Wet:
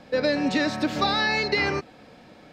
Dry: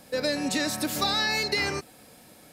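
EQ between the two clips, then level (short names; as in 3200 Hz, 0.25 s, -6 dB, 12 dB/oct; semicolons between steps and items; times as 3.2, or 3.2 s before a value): air absorption 200 m; bell 93 Hz -2.5 dB 1.3 oct; +5.5 dB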